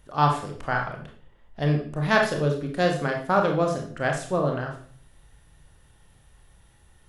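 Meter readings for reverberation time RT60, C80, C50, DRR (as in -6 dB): 0.50 s, 11.0 dB, 6.5 dB, 1.5 dB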